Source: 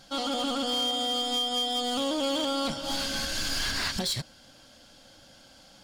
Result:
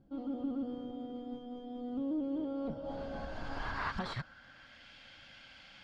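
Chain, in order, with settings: passive tone stack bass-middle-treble 5-5-5; one-sided clip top -36.5 dBFS; low-pass sweep 350 Hz -> 2300 Hz, 2.3–4.91; gain +10.5 dB

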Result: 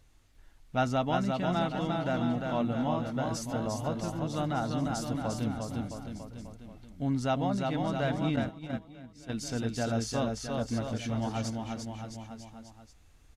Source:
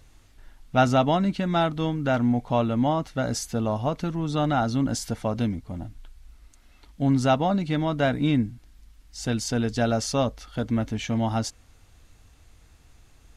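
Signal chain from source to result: bouncing-ball echo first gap 0.35 s, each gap 0.9×, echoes 5; 8.36–9.37 gate -23 dBFS, range -12 dB; gain -8.5 dB

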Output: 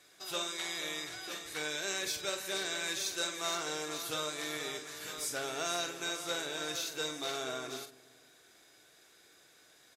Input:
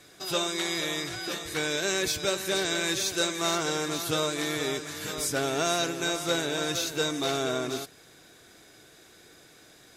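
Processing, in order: low shelf 340 Hz -12 dB; doubler 46 ms -8.5 dB; dark delay 0.172 s, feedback 58%, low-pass 700 Hz, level -17.5 dB; gain -7 dB

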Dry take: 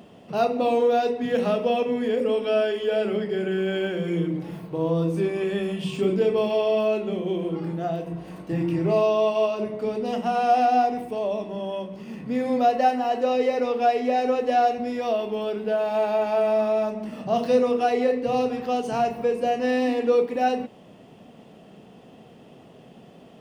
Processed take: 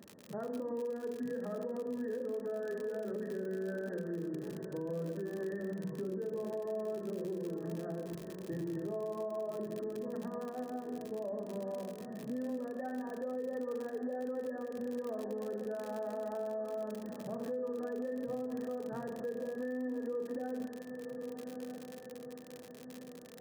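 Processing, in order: brick-wall FIR low-pass 1900 Hz; bell 1000 Hz -9.5 dB 1.1 oct; diffused feedback echo 1.221 s, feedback 49%, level -14 dB; non-linear reverb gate 0.35 s falling, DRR 6.5 dB; crackle 63/s -29 dBFS; compressor, threshold -24 dBFS, peak gain reduction 10 dB; low shelf 480 Hz -5 dB; notch comb 720 Hz; limiter -26.5 dBFS, peak gain reduction 6 dB; gain -4.5 dB

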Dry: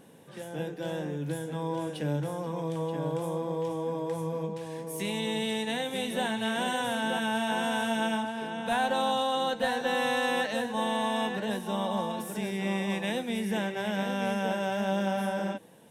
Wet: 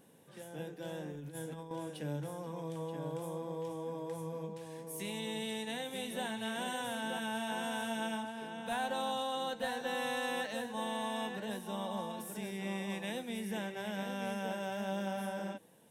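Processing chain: high shelf 8000 Hz +7 dB; 1.11–1.71 negative-ratio compressor -35 dBFS, ratio -0.5; gain -8.5 dB

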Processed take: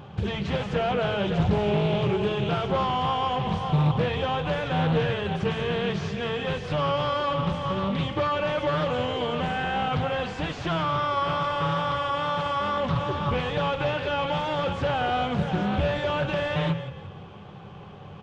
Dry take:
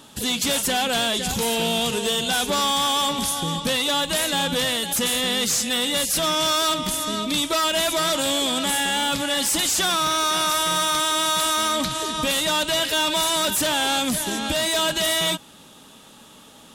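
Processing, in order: bell 290 Hz -11.5 dB 0.36 oct; in parallel at 0 dB: compressor, threshold -37 dBFS, peak gain reduction 15.5 dB; on the sum: crossover distortion -52 dBFS; vibrato 2.5 Hz 26 cents; soft clip -21 dBFS, distortion -16 dB; tape spacing loss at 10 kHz 45 dB; frequency-shifting echo 0.161 s, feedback 38%, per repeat -38 Hz, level -11 dB; on a send at -15.5 dB: reverb RT60 0.30 s, pre-delay 3 ms; on the sum: speed mistake 48 kHz file played as 44.1 kHz; Doppler distortion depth 0.39 ms; gain +4.5 dB

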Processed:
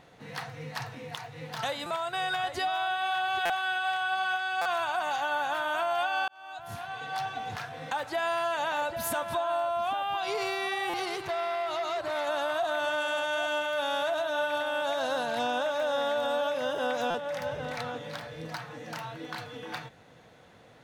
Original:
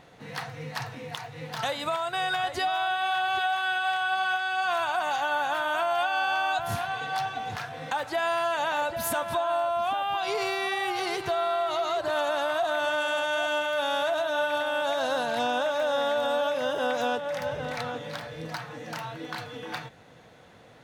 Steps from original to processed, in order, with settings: 6.28–7.32 fade in; stuck buffer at 1.86/3.45/4.61/10.89/17.1, samples 256, times 7; 11.05–12.27 core saturation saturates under 1100 Hz; gain -2.5 dB

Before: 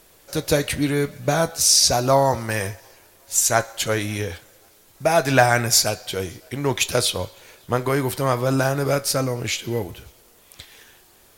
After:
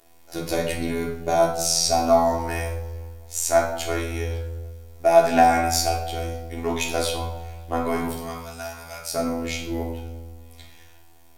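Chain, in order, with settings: bell 690 Hz +8 dB 0.8 oct; robotiser 83.5 Hz; 8.09–9.14 passive tone stack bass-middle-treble 10-0-10; resonator 83 Hz, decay 1.8 s, harmonics all, mix 60%; reverb RT60 0.65 s, pre-delay 3 ms, DRR -1.5 dB

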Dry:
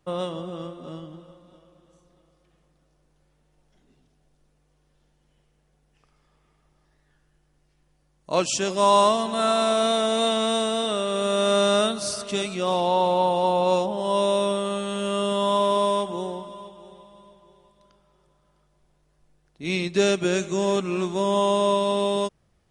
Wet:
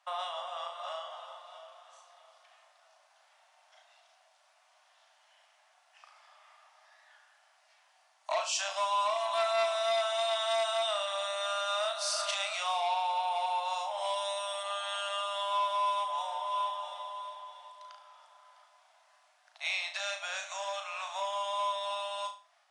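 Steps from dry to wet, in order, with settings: octaver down 1 oct, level -1 dB; AGC gain up to 6.5 dB; 12.54–14.63 high shelf 7700 Hz +11.5 dB; compressor 8:1, threshold -29 dBFS, peak gain reduction 18.5 dB; steep high-pass 620 Hz 96 dB/oct; air absorption 56 m; flutter echo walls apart 6.1 m, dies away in 0.35 s; core saturation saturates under 1400 Hz; gain +4 dB

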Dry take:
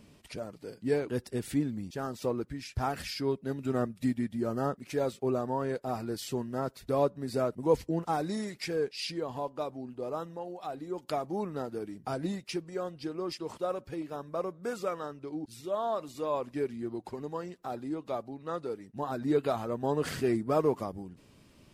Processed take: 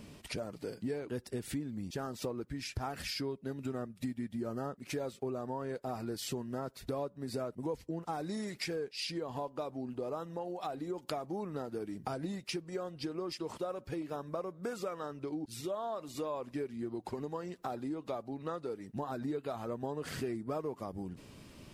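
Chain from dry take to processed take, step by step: compressor 6:1, threshold -41 dBFS, peak gain reduction 20 dB; gain +5.5 dB

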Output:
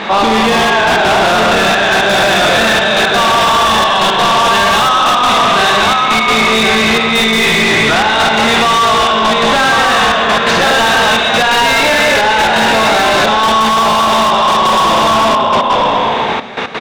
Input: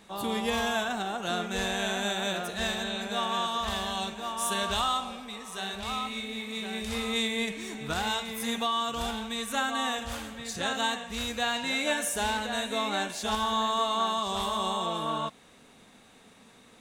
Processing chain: frequency-shifting echo 0.241 s, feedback 48%, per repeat -56 Hz, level -5 dB; Schroeder reverb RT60 1.6 s, combs from 28 ms, DRR 1 dB; step gate "xxxxxxxx..x." 172 bpm -12 dB; air absorption 240 m; overdrive pedal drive 27 dB, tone 5500 Hz, clips at -16 dBFS; 7.6–10.13 bell 14000 Hz -7 dB 0.32 oct; maximiser +24.5 dB; gain -5 dB

